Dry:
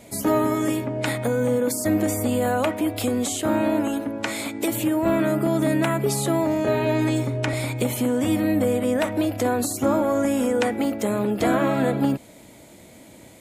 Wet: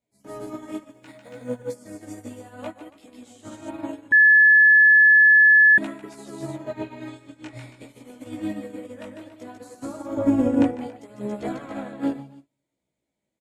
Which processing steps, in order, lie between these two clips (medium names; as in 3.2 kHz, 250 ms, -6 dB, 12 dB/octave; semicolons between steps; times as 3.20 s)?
low-pass 8.8 kHz 12 dB/octave; 0.91–1.37 s: short-mantissa float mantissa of 4-bit; 6.69–7.75 s: doubling 25 ms -5 dB; 10.17–10.72 s: tilt shelf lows +9.5 dB, about 1.1 kHz; loudspeakers at several distances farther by 51 m -4 dB, 96 m -6 dB; chorus voices 2, 0.66 Hz, delay 18 ms, depth 3.6 ms; simulated room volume 2900 m³, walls furnished, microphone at 0.31 m; 4.12–5.78 s: bleep 1.72 kHz -10 dBFS; upward expansion 2.5:1, over -36 dBFS